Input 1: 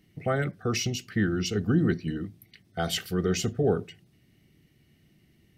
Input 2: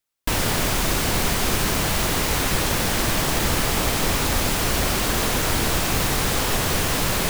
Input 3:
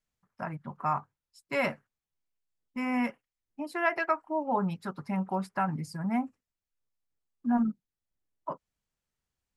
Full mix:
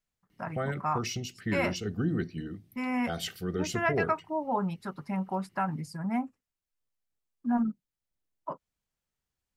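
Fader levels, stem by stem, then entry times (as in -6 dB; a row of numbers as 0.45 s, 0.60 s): -6.0 dB, mute, -1.0 dB; 0.30 s, mute, 0.00 s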